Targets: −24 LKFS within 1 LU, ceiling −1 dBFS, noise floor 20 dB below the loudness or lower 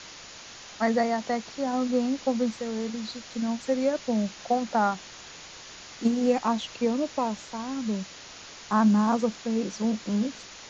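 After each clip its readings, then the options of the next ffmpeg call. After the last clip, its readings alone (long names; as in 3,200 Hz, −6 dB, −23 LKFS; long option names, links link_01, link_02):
background noise floor −45 dBFS; target noise floor −48 dBFS; integrated loudness −27.5 LKFS; sample peak −12.0 dBFS; target loudness −24.0 LKFS
→ -af "afftdn=noise_reduction=6:noise_floor=-45"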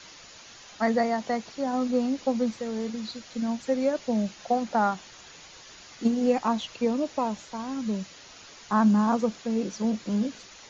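background noise floor −49 dBFS; integrated loudness −27.5 LKFS; sample peak −12.0 dBFS; target loudness −24.0 LKFS
→ -af "volume=3.5dB"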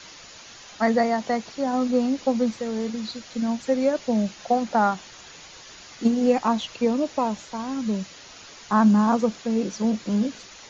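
integrated loudness −24.0 LKFS; sample peak −8.5 dBFS; background noise floor −45 dBFS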